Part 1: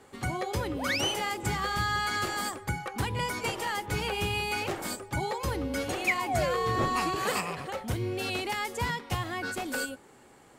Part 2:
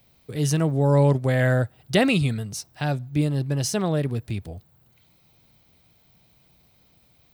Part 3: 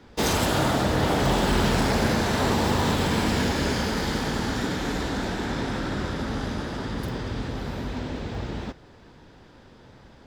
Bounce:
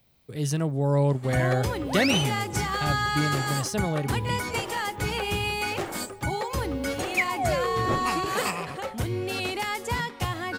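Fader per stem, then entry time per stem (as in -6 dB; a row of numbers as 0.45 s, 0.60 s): +2.5 dB, -4.5 dB, mute; 1.10 s, 0.00 s, mute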